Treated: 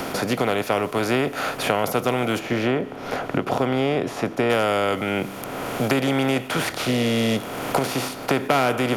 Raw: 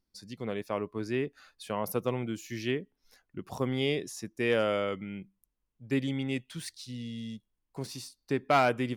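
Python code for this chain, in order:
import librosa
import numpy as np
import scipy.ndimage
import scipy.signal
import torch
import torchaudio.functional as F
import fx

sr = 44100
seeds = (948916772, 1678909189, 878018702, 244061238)

y = fx.bin_compress(x, sr, power=0.4)
y = fx.recorder_agc(y, sr, target_db=-15.5, rise_db_per_s=6.9, max_gain_db=30)
y = fx.lowpass(y, sr, hz=1300.0, slope=6, at=(2.38, 4.49), fade=0.02)
y = fx.band_squash(y, sr, depth_pct=70)
y = y * librosa.db_to_amplitude(3.5)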